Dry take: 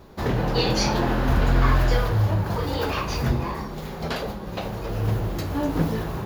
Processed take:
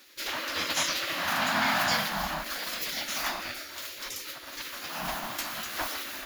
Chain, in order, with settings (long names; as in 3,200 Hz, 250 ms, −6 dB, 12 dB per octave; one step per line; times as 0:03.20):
drawn EQ curve 230 Hz 0 dB, 450 Hz −22 dB, 660 Hz +5 dB, 6,200 Hz +11 dB
gate on every frequency bin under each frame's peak −15 dB weak
level −2.5 dB